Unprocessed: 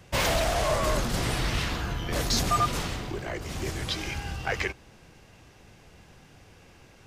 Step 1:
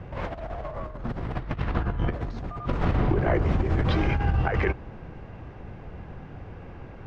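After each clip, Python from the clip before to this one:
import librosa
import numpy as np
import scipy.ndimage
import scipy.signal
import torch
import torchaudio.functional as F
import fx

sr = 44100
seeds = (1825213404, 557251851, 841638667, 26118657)

y = scipy.signal.sosfilt(scipy.signal.butter(2, 1400.0, 'lowpass', fs=sr, output='sos'), x)
y = fx.low_shelf(y, sr, hz=140.0, db=5.0)
y = fx.over_compress(y, sr, threshold_db=-31.0, ratio=-0.5)
y = y * 10.0 ** (6.0 / 20.0)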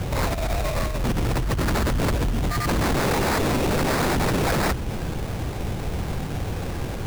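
y = fx.dynamic_eq(x, sr, hz=730.0, q=0.72, threshold_db=-40.0, ratio=4.0, max_db=-4)
y = fx.fold_sine(y, sr, drive_db=17, ceiling_db=-11.0)
y = fx.sample_hold(y, sr, seeds[0], rate_hz=3100.0, jitter_pct=20)
y = y * 10.0 ** (-7.5 / 20.0)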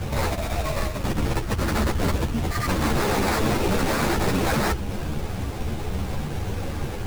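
y = fx.ensemble(x, sr)
y = y * 10.0 ** (2.5 / 20.0)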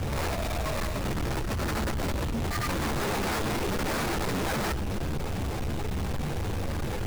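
y = 10.0 ** (-30.5 / 20.0) * np.tanh(x / 10.0 ** (-30.5 / 20.0))
y = y * 10.0 ** (3.5 / 20.0)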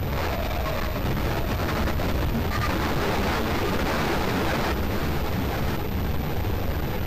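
y = x + 10.0 ** (-6.0 / 20.0) * np.pad(x, (int(1039 * sr / 1000.0), 0))[:len(x)]
y = fx.pwm(y, sr, carrier_hz=12000.0)
y = y * 10.0 ** (3.5 / 20.0)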